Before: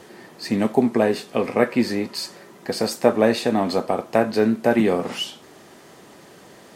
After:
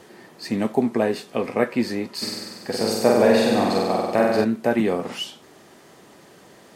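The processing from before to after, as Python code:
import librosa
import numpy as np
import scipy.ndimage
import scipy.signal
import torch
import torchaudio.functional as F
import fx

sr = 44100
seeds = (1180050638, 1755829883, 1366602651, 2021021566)

y = fx.room_flutter(x, sr, wall_m=8.2, rt60_s=1.4, at=(2.21, 4.43), fade=0.02)
y = y * 10.0 ** (-2.5 / 20.0)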